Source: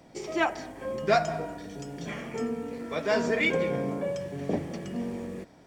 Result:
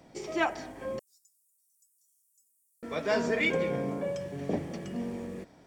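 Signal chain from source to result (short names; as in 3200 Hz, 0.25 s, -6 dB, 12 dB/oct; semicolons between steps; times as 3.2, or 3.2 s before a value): 0.99–2.83 inverse Chebyshev high-pass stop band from 2500 Hz, stop band 70 dB; gain -2 dB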